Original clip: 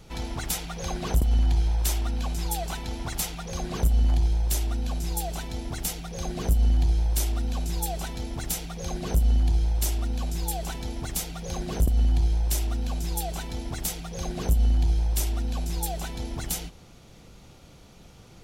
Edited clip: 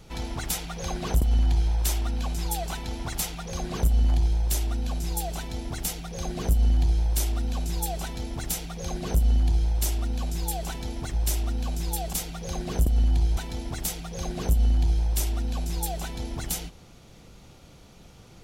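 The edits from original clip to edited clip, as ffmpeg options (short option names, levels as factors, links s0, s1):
-filter_complex "[0:a]asplit=4[s0][s1][s2][s3];[s0]atrim=end=11.142[s4];[s1]atrim=start=12.378:end=13.372[s5];[s2]atrim=start=11.138:end=12.382[s6];[s3]atrim=start=13.368[s7];[s4][s5]acrossfade=d=0.004:c1=hsin:c2=hsin[s8];[s8][s6]acrossfade=d=0.004:c1=hsin:c2=hsin[s9];[s9][s7]acrossfade=d=0.004:c1=hsin:c2=hsin"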